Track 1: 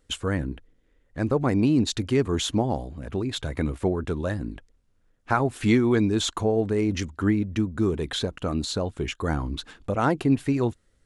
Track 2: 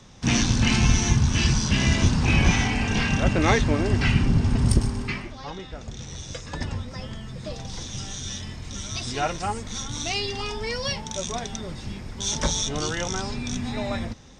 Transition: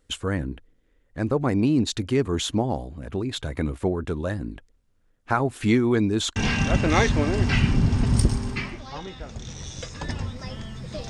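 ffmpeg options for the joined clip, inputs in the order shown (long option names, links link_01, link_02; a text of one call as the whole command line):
ffmpeg -i cue0.wav -i cue1.wav -filter_complex "[0:a]apad=whole_dur=11.09,atrim=end=11.09,atrim=end=6.362[link_01];[1:a]atrim=start=2.878:end=7.61[link_02];[link_01][link_02]acrossfade=duration=0.004:curve1=hsin:curve2=hsin" out.wav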